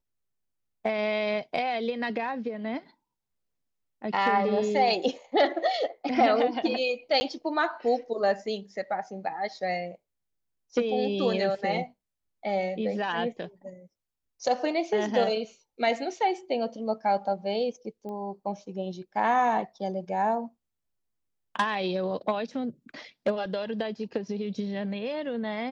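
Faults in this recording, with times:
7.2–7.21 gap 10 ms
18.09 pop -29 dBFS

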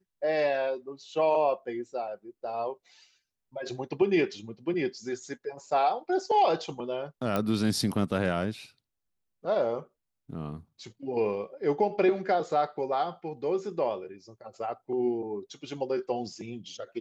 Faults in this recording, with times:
7.36 pop -15 dBFS

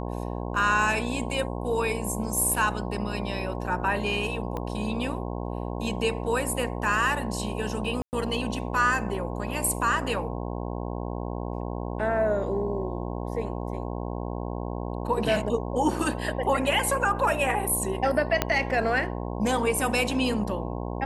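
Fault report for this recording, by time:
buzz 60 Hz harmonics 18 -32 dBFS
4.57 pop -20 dBFS
8.02–8.13 gap 0.109 s
18.42 pop -7 dBFS

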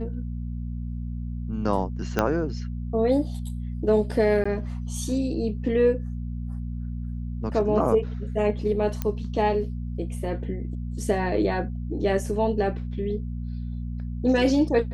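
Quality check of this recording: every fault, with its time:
hum 60 Hz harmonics 4 -31 dBFS
2.19 pop -9 dBFS
4.44–4.46 gap 15 ms
9.02 pop -13 dBFS

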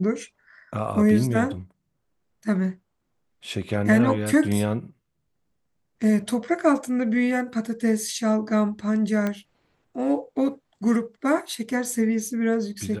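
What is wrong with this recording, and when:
9.27 pop -14 dBFS

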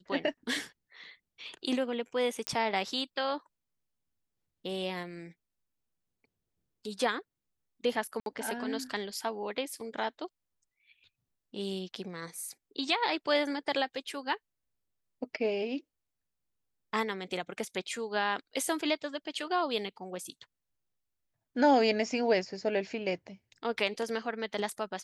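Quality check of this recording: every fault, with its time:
2.47 pop -13 dBFS
8.2–8.26 gap 62 ms

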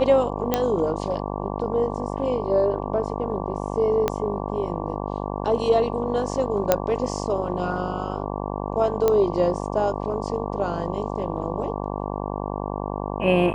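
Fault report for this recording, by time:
buzz 50 Hz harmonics 23 -29 dBFS
0.54 pop -6 dBFS
4.08 pop -8 dBFS
6.72 pop -3 dBFS
9.08 pop -8 dBFS

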